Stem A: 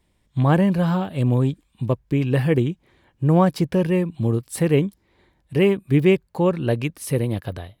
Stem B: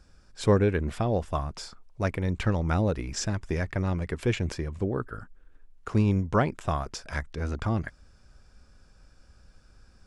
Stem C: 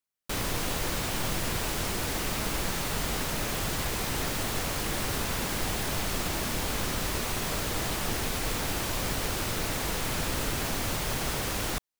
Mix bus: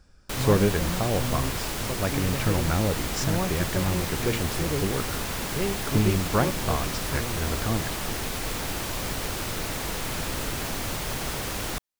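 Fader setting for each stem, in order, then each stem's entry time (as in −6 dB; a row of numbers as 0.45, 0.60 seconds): −12.5, 0.0, 0.0 decibels; 0.00, 0.00, 0.00 seconds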